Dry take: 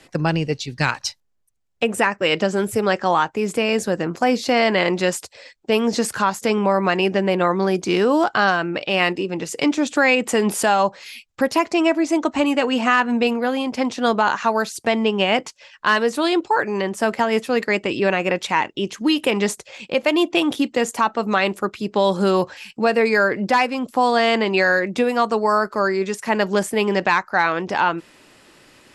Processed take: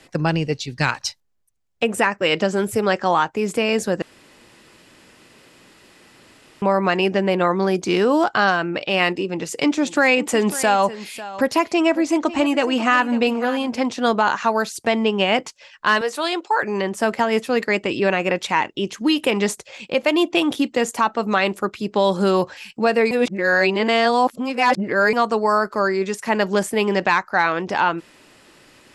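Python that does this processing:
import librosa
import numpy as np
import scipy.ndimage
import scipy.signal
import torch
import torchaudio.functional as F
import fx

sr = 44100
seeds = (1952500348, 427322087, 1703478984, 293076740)

y = fx.echo_single(x, sr, ms=547, db=-15.5, at=(9.81, 13.76), fade=0.02)
y = fx.highpass(y, sr, hz=510.0, slope=12, at=(16.01, 16.63))
y = fx.edit(y, sr, fx.room_tone_fill(start_s=4.02, length_s=2.6),
    fx.reverse_span(start_s=23.11, length_s=2.02), tone=tone)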